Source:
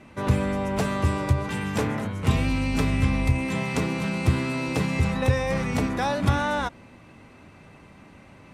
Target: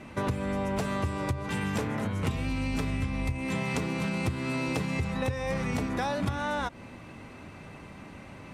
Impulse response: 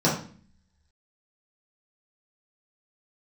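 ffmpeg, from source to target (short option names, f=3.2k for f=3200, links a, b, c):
-af "acompressor=threshold=-30dB:ratio=10,volume=3.5dB"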